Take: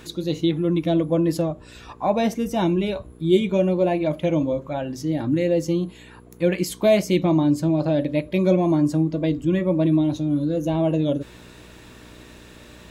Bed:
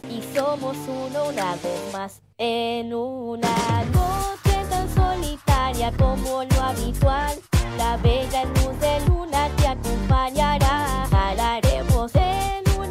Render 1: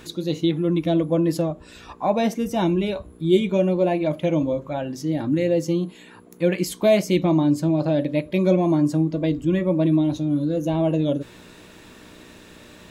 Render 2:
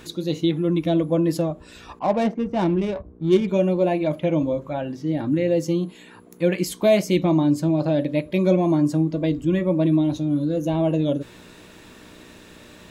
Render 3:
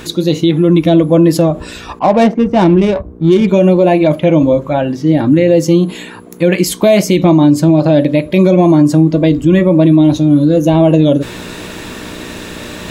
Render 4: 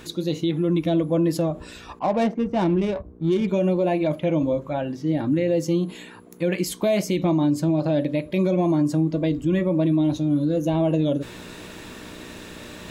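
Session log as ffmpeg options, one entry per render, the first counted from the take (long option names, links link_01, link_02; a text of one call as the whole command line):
ffmpeg -i in.wav -af "bandreject=frequency=60:width_type=h:width=4,bandreject=frequency=120:width_type=h:width=4" out.wav
ffmpeg -i in.wav -filter_complex "[0:a]asettb=1/sr,asplit=3[link_01][link_02][link_03];[link_01]atrim=end=1.994[link_04];[link_02]atrim=start=1.99:end=3.48,asetpts=PTS-STARTPTS,afade=type=in:duration=0.004:curve=qsin,afade=type=out:start_time=1.486:duration=0.004:curve=qsin,adynamicsmooth=sensitivity=2:basefreq=880[link_05];[link_03]atrim=start=3.476[link_06];[link_04][link_05]acrossfade=duration=0.004:curve1=hsin:curve2=qsin[link_07];[link_07][link_06]acrossfade=duration=0.004:curve1=qsin:curve2=hsin,asettb=1/sr,asplit=3[link_08][link_09][link_10];[link_08]atrim=end=4.194[link_11];[link_09]atrim=start=4.19:end=5.48,asetpts=PTS-STARTPTS,afade=type=in:duration=0.004:curve=qsin,afade=type=out:start_time=1.286:duration=0.004:curve=qsin,acrossover=split=3700[link_12][link_13];[link_13]acompressor=threshold=-57dB:ratio=4:attack=1:release=60[link_14];[link_12][link_14]amix=inputs=2:normalize=0[link_15];[link_10]atrim=start=5.476[link_16];[link_11][link_15]acrossfade=duration=0.004:curve1=hsin:curve2=qsin[link_17];[link_17][link_16]acrossfade=duration=0.004:curve1=qsin:curve2=hsin" out.wav
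ffmpeg -i in.wav -af "areverse,acompressor=mode=upward:threshold=-32dB:ratio=2.5,areverse,alimiter=level_in=13.5dB:limit=-1dB:release=50:level=0:latency=1" out.wav
ffmpeg -i in.wav -af "volume=-12.5dB" out.wav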